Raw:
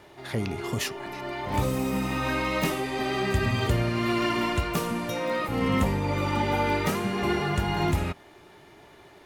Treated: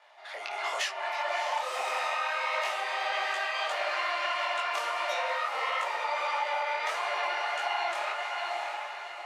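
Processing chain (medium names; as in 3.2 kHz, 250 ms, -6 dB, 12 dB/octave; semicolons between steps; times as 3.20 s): level rider gain up to 13 dB; elliptic high-pass 620 Hz, stop band 70 dB; distance through air 74 m; echo that smears into a reverb 661 ms, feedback 41%, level -9 dB; compression, threshold -24 dBFS, peak gain reduction 9.5 dB; detune thickener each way 54 cents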